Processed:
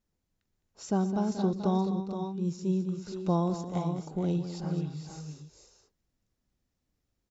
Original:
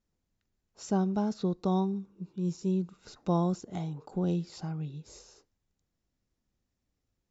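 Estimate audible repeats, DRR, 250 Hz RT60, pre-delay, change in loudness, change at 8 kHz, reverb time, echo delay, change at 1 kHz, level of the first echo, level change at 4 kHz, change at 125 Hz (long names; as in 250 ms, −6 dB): 4, no reverb audible, no reverb audible, no reverb audible, +1.0 dB, can't be measured, no reverb audible, 119 ms, +1.5 dB, −18.0 dB, +1.0 dB, +1.0 dB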